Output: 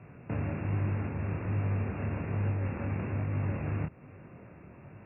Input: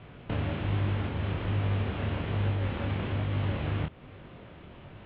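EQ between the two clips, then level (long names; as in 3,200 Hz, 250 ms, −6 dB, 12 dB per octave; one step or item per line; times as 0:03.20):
high-pass filter 100 Hz
linear-phase brick-wall low-pass 2,800 Hz
low-shelf EQ 260 Hz +6.5 dB
−4.5 dB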